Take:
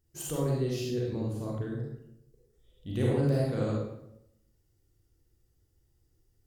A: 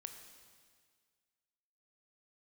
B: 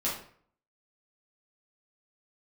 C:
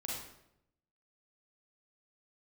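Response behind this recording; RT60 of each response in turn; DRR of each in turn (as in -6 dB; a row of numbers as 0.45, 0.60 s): C; 1.8, 0.55, 0.80 s; 5.5, -8.0, -4.5 dB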